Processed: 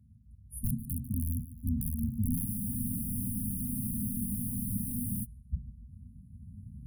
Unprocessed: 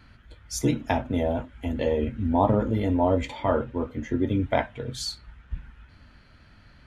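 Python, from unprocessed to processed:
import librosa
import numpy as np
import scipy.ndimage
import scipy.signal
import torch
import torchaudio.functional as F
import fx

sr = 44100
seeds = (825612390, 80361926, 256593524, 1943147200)

p1 = fx.recorder_agc(x, sr, target_db=-11.5, rise_db_per_s=6.3, max_gain_db=30)
p2 = scipy.signal.sosfilt(scipy.signal.butter(4, 60.0, 'highpass', fs=sr, output='sos'), p1)
p3 = fx.high_shelf(p2, sr, hz=11000.0, db=-7.5)
p4 = (np.mod(10.0 ** (15.0 / 20.0) * p3 + 1.0, 2.0) - 1.0) / 10.0 ** (15.0 / 20.0)
p5 = fx.brickwall_bandstop(p4, sr, low_hz=250.0, high_hz=9300.0)
p6 = p5 + fx.echo_feedback(p5, sr, ms=146, feedback_pct=31, wet_db=-14.0, dry=0)
p7 = fx.spec_freeze(p6, sr, seeds[0], at_s=2.47, hold_s=2.76)
y = F.gain(torch.from_numpy(p7), -3.0).numpy()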